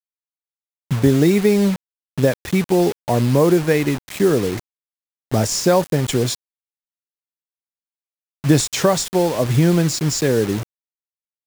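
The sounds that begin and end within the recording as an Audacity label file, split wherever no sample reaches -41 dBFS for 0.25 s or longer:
0.910000	1.760000	sound
2.180000	4.600000	sound
5.310000	6.350000	sound
8.440000	10.630000	sound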